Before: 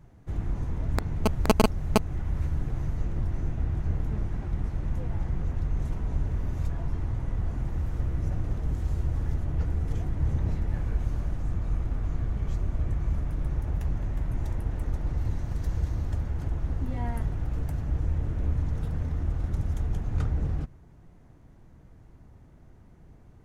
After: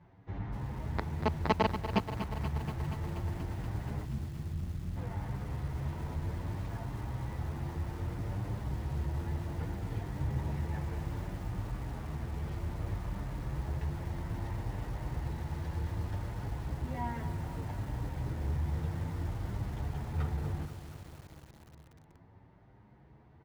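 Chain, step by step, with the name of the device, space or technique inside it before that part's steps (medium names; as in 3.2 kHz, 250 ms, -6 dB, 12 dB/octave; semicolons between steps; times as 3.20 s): 4.04–4.96 s: inverse Chebyshev band-stop 1–5 kHz, stop band 70 dB; barber-pole flanger into a guitar amplifier (endless flanger 8.6 ms +0.63 Hz; saturation -17 dBFS, distortion -20 dB; cabinet simulation 84–4500 Hz, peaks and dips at 250 Hz -3 dB, 900 Hz +7 dB, 1.9 kHz +4 dB); echo from a far wall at 250 m, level -29 dB; bit-crushed delay 239 ms, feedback 80%, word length 8-bit, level -10.5 dB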